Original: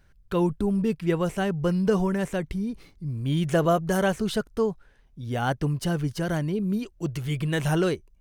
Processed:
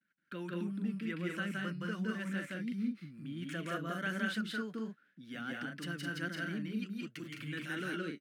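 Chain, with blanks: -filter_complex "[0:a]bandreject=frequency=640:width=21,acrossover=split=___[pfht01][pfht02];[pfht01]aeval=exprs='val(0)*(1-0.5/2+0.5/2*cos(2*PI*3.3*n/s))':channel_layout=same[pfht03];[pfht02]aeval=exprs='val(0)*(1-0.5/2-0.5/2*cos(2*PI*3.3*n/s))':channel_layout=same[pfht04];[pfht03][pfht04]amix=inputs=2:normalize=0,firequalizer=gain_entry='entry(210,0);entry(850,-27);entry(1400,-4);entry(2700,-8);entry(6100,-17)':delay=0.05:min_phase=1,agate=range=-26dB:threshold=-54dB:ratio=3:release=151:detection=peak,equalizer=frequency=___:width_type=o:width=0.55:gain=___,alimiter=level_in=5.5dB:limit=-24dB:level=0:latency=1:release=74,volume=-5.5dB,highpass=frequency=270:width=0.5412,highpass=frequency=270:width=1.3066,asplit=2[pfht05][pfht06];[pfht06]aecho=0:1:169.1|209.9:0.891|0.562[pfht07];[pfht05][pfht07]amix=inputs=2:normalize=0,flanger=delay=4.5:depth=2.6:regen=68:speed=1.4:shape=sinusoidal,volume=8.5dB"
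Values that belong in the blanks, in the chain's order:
550, 410, -14.5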